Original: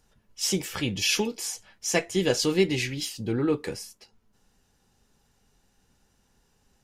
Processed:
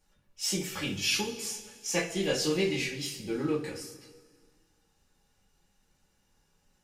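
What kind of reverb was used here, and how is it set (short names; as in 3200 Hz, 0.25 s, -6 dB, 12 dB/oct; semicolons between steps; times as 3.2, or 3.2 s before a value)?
two-slope reverb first 0.29 s, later 1.8 s, from -18 dB, DRR -6 dB; gain -10 dB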